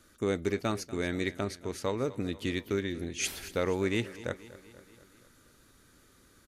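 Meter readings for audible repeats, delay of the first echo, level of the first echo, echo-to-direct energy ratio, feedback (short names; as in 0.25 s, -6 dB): 4, 0.24 s, -17.5 dB, -15.5 dB, 59%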